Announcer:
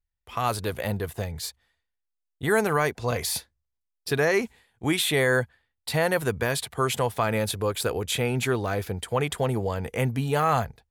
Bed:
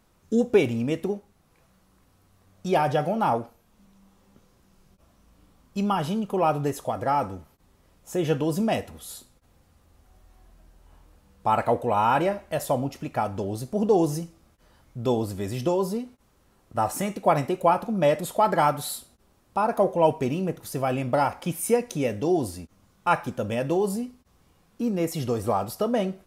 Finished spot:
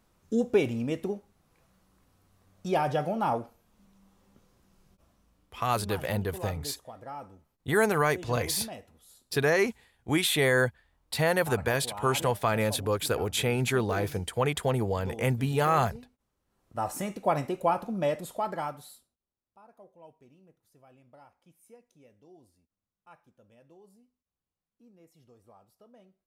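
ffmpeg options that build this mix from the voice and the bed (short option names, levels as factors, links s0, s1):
-filter_complex "[0:a]adelay=5250,volume=0.841[s0];[1:a]volume=2.24,afade=t=out:st=4.93:d=0.72:silence=0.237137,afade=t=in:st=16.45:d=0.45:silence=0.266073,afade=t=out:st=17.85:d=1.32:silence=0.0446684[s1];[s0][s1]amix=inputs=2:normalize=0"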